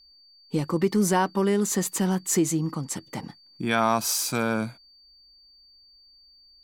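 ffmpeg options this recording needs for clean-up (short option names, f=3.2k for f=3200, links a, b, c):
-af "bandreject=f=4.6k:w=30"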